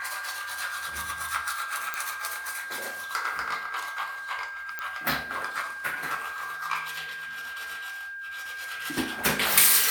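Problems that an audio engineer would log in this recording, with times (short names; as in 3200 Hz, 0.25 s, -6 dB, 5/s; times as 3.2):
tone 1600 Hz -35 dBFS
1.94 pop
4.79 pop -17 dBFS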